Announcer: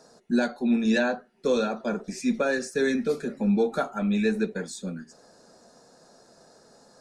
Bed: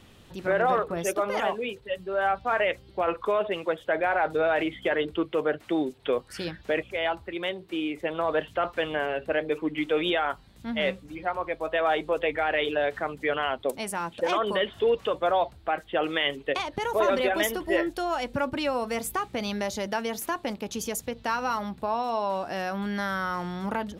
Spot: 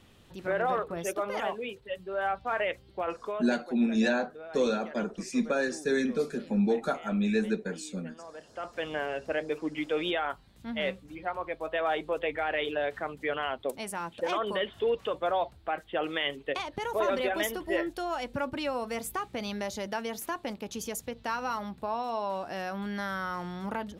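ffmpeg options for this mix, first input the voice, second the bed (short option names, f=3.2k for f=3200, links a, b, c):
-filter_complex "[0:a]adelay=3100,volume=-3dB[a];[1:a]volume=10.5dB,afade=t=out:st=2.91:d=0.83:silence=0.177828,afade=t=in:st=8.44:d=0.49:silence=0.16788[b];[a][b]amix=inputs=2:normalize=0"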